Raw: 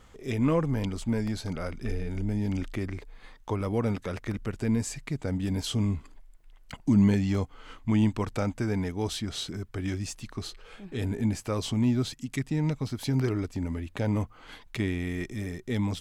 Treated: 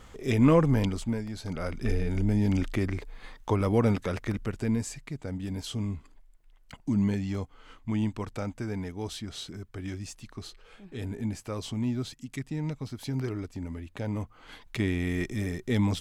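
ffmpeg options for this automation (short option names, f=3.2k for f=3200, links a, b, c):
-af "volume=24dB,afade=t=out:st=0.76:d=0.51:silence=0.251189,afade=t=in:st=1.27:d=0.62:silence=0.266073,afade=t=out:st=3.85:d=1.24:silence=0.354813,afade=t=in:st=14.18:d=1:silence=0.398107"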